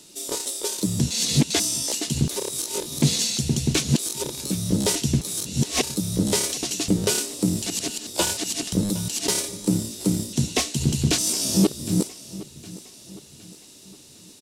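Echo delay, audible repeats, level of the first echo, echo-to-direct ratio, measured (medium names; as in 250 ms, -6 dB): 762 ms, 3, -18.0 dB, -17.0 dB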